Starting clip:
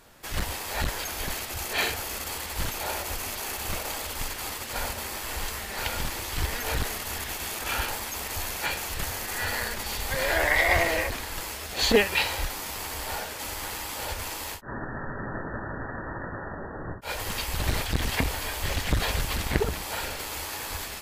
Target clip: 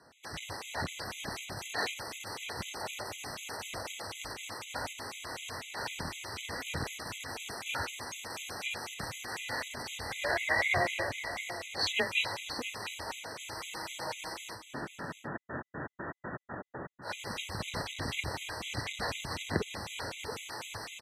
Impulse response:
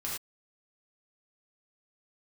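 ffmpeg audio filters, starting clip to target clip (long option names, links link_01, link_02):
-filter_complex "[0:a]asettb=1/sr,asplit=3[link_01][link_02][link_03];[link_01]atrim=end=13.544[link_04];[link_02]atrim=start=13.54:end=14.33,asetpts=PTS-STARTPTS,afade=type=in:duration=0.004:curve=qsin,afade=type=out:start_time=0.786:duration=0.004:curve=qsin,aecho=1:1:6.6:0.65,atrim=end_sample=34839[link_05];[link_03]atrim=start=14.326[link_06];[link_04][link_05]acrossfade=duration=0.004:curve1=hsin:curve2=qsin[link_07];[link_07][link_06]acrossfade=duration=0.004:curve1=qsin:curve2=hsin,afreqshift=23,highpass=120,lowpass=7500,asplit=2[link_08][link_09];[link_09]aecho=0:1:674:0.299[link_10];[link_08][link_10]amix=inputs=2:normalize=0,afftfilt=real='re*gt(sin(2*PI*4*pts/sr)*(1-2*mod(floor(b*sr/1024/2000),2)),0)':imag='im*gt(sin(2*PI*4*pts/sr)*(1-2*mod(floor(b*sr/1024/2000),2)),0)':win_size=1024:overlap=0.75,volume=-3.5dB"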